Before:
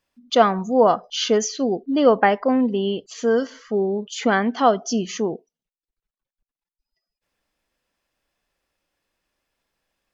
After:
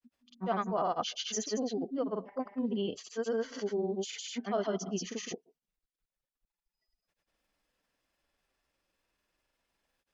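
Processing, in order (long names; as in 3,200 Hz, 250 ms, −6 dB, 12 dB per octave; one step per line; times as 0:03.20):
reversed playback
downward compressor 4 to 1, threshold −28 dBFS, peak gain reduction 15.5 dB
reversed playback
granular cloud, grains 20 per second, spray 155 ms, pitch spread up and down by 0 semitones
level −2 dB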